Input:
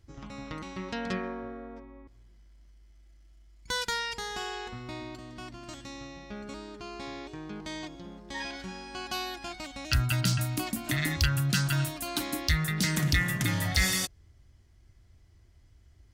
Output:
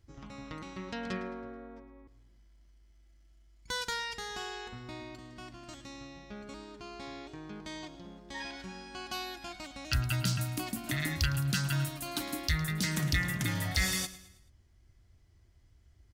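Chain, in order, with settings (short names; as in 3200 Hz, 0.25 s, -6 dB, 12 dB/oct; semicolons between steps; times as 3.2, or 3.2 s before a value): feedback echo 0.108 s, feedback 45%, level -16 dB; gain -4 dB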